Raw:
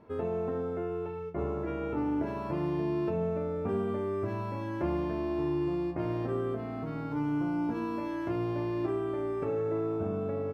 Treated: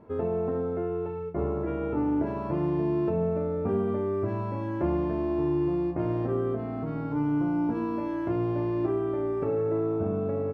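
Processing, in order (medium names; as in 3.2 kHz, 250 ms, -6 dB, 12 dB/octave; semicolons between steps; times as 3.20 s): treble shelf 2 kHz -11.5 dB; trim +4.5 dB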